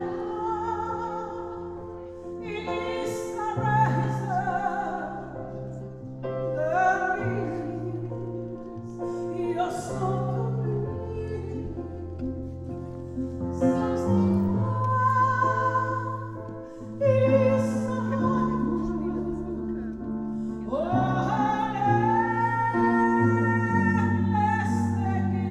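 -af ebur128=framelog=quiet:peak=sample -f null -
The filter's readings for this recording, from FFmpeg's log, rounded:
Integrated loudness:
  I:         -26.6 LUFS
  Threshold: -36.9 LUFS
Loudness range:
  LRA:         7.3 LU
  Threshold: -46.9 LUFS
  LRA low:   -30.8 LUFS
  LRA high:  -23.5 LUFS
Sample peak:
  Peak:       -8.9 dBFS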